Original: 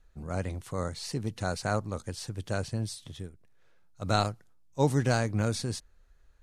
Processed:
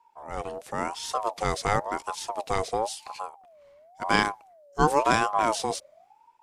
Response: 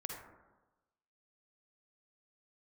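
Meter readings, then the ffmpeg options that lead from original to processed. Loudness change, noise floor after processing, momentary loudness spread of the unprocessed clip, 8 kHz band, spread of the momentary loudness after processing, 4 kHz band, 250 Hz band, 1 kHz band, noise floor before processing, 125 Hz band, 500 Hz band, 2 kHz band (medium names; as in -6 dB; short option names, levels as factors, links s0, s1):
+4.0 dB, -61 dBFS, 14 LU, +3.5 dB, 15 LU, +4.0 dB, -0.5 dB, +10.5 dB, -60 dBFS, -8.0 dB, +4.0 dB, +8.0 dB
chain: -af "dynaudnorm=f=200:g=7:m=2.24,aeval=exprs='val(0)*sin(2*PI*750*n/s+750*0.25/0.95*sin(2*PI*0.95*n/s))':c=same"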